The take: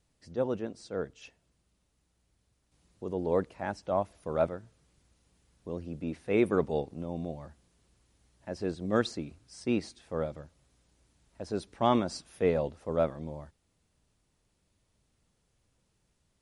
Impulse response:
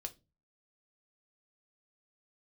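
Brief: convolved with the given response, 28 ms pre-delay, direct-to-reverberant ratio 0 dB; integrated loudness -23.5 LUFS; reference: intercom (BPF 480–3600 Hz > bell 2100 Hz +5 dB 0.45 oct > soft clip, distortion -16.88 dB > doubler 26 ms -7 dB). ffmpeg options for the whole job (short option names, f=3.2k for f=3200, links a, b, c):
-filter_complex "[0:a]asplit=2[a][b];[1:a]atrim=start_sample=2205,adelay=28[c];[b][c]afir=irnorm=-1:irlink=0,volume=3dB[d];[a][d]amix=inputs=2:normalize=0,highpass=480,lowpass=3.6k,equalizer=f=2.1k:t=o:w=0.45:g=5,asoftclip=threshold=-18dB,asplit=2[e][f];[f]adelay=26,volume=-7dB[g];[e][g]amix=inputs=2:normalize=0,volume=9dB"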